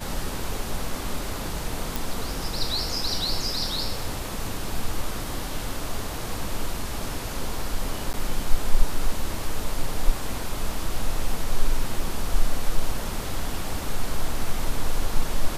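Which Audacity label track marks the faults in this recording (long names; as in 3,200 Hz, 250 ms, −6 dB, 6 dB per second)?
1.960000	1.960000	click
8.130000	8.140000	drop-out 9.3 ms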